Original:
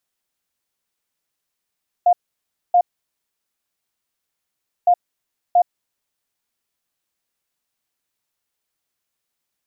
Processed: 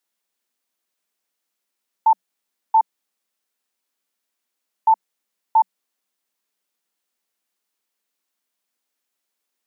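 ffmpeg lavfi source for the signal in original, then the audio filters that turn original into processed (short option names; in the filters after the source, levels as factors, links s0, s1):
-f lavfi -i "aevalsrc='0.335*sin(2*PI*708*t)*clip(min(mod(mod(t,2.81),0.68),0.07-mod(mod(t,2.81),0.68))/0.005,0,1)*lt(mod(t,2.81),1.36)':d=5.62:s=44100"
-af "afreqshift=180"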